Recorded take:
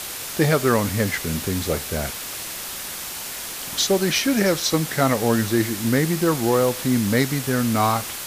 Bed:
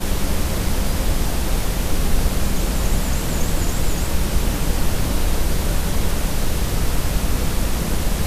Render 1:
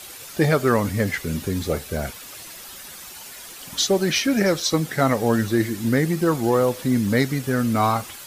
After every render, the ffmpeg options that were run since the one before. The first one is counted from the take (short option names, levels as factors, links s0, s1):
-af "afftdn=nr=10:nf=-32"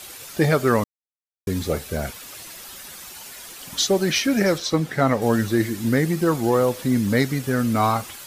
-filter_complex "[0:a]asettb=1/sr,asplit=3[s0][s1][s2];[s0]atrim=end=4.584[s3];[s1]atrim=start=4.58:end=5.22,asetpts=PTS-STARTPTS,afade=t=in:d=0.004:c=qsin,afade=t=out:st=0.636:d=0.004:c=qsin,aemphasis=mode=reproduction:type=cd[s4];[s2]atrim=start=5.216[s5];[s3][s4]acrossfade=d=0.004:c1=hsin:c2=qsin[s6];[s6][s5]acrossfade=d=0.004:c1=qsin:c2=hsin,asplit=3[s7][s8][s9];[s7]atrim=end=0.84,asetpts=PTS-STARTPTS,afade=t=out:st=0.836:d=0.004:c=hsin[s10];[s8]atrim=start=0.84:end=1.47,asetpts=PTS-STARTPTS,volume=0[s11];[s9]atrim=start=1.47,asetpts=PTS-STARTPTS,afade=t=in:d=0.004:c=hsin[s12];[s10][s11][s12]concat=n=3:v=0:a=1"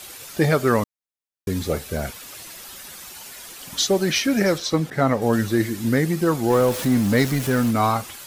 -filter_complex "[0:a]asettb=1/sr,asplit=3[s0][s1][s2];[s0]atrim=end=4.904[s3];[s1]atrim=start=4.9:end=5.33,asetpts=PTS-STARTPTS,afade=t=in:d=0.004:c=qsin,afade=t=out:st=0.426:d=0.004:c=qsin,adynamicequalizer=threshold=0.0224:dfrequency=1500:dqfactor=0.7:tfrequency=1500:tqfactor=0.7:attack=5:release=100:ratio=0.375:range=2:mode=cutabove:tftype=highshelf[s4];[s2]atrim=start=5.326[s5];[s3][s4]acrossfade=d=0.004:c1=hsin:c2=qsin[s6];[s6][s5]acrossfade=d=0.004:c1=qsin:c2=hsin,asettb=1/sr,asplit=3[s7][s8][s9];[s7]atrim=end=6.504[s10];[s8]atrim=start=6.5:end=7.71,asetpts=PTS-STARTPTS,afade=t=in:d=0.004:c=qsin,afade=t=out:st=1.206:d=0.004:c=qsin,aeval=exprs='val(0)+0.5*0.0473*sgn(val(0))':c=same[s11];[s9]atrim=start=7.706[s12];[s10][s11]acrossfade=d=0.004:c1=hsin:c2=qsin[s13];[s13][s12]acrossfade=d=0.004:c1=qsin:c2=hsin"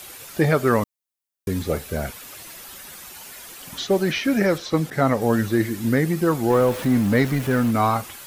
-filter_complex "[0:a]acrossover=split=3100[s0][s1];[s1]acompressor=threshold=0.00708:ratio=4:attack=1:release=60[s2];[s0][s2]amix=inputs=2:normalize=0,highshelf=f=6800:g=8"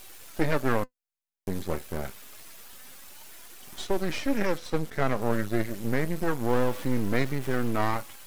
-af "aeval=exprs='max(val(0),0)':c=same,flanger=delay=2.5:depth=3:regen=74:speed=0.27:shape=triangular"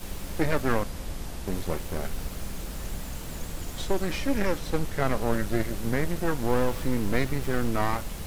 -filter_complex "[1:a]volume=0.168[s0];[0:a][s0]amix=inputs=2:normalize=0"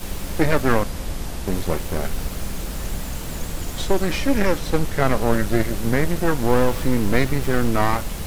-af "volume=2.24"